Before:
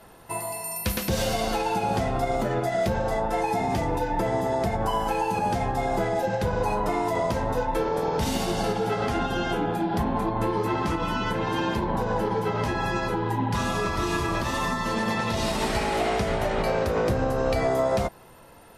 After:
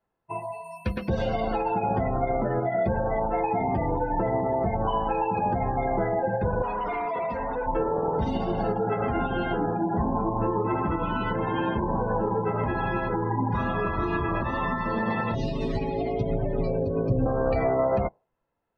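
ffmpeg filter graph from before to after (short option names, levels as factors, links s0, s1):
-filter_complex "[0:a]asettb=1/sr,asplit=3[s0][s1][s2];[s0]atrim=end=6.624[s3];[s1]atrim=start=6.62:end=7.66,asetpts=PTS-STARTPTS,afade=t=in:d=0.004:c=qsin,afade=t=out:st=1.036:d=0.004:c=qsin,tiltshelf=f=680:g=-6,aecho=1:1:4.2:0.57,atrim=end_sample=45864,volume=20,asoftclip=hard,volume=0.0501[s4];[s2]atrim=start=7.656[s5];[s3][s4]acrossfade=d=0.004:c1=hsin:c2=qsin[s6];[s6][s5]acrossfade=d=0.004:c1=qsin:c2=hsin,asettb=1/sr,asplit=3[s7][s8][s9];[s7]atrim=end=15.344[s10];[s8]atrim=start=15.34:end=17.26,asetpts=PTS-STARTPTS,afade=t=in:d=0.004:c=qsin,afade=t=out:st=1.916:d=0.004:c=qsin,aecho=1:1:7.2:0.92,atrim=end_sample=84672,acrossover=split=450|3000[s11][s12][s13];[s12]acompressor=threshold=0.0126:ratio=4:attack=3.2:release=140:knee=2.83:detection=peak[s14];[s11][s14][s13]amix=inputs=3:normalize=0[s15];[s9]atrim=start=17.256[s16];[s10][s15]acrossfade=d=0.004:c1=hsin:c2=qsin[s17];[s17][s16]acrossfade=d=0.004:c1=qsin:c2=hsin,afftdn=nr=30:nf=-32,lowpass=2600"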